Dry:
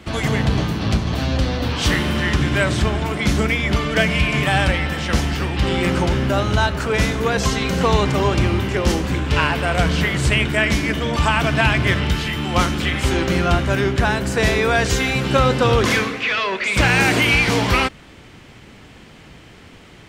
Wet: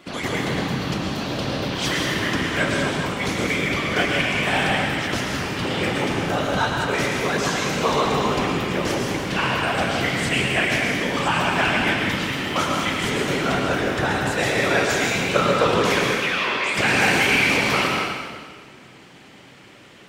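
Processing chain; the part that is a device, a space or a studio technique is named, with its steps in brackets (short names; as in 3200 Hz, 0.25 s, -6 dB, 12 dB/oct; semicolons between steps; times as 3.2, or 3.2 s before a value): whispering ghost (whisperiser; HPF 280 Hz 6 dB/oct; reverb RT60 1.7 s, pre-delay 0.101 s, DRR 0 dB); gain -4 dB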